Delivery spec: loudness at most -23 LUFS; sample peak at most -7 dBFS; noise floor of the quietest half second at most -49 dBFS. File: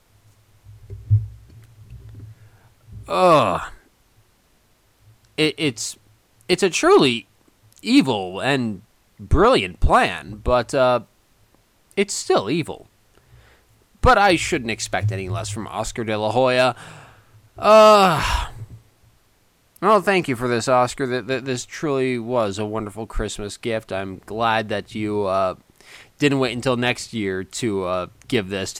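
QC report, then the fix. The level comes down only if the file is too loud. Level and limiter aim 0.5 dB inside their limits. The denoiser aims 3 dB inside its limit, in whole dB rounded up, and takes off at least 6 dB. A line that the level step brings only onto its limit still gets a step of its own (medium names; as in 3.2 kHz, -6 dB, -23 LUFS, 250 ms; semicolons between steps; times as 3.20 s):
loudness -20.0 LUFS: fail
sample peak -5.0 dBFS: fail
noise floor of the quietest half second -60 dBFS: pass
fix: trim -3.5 dB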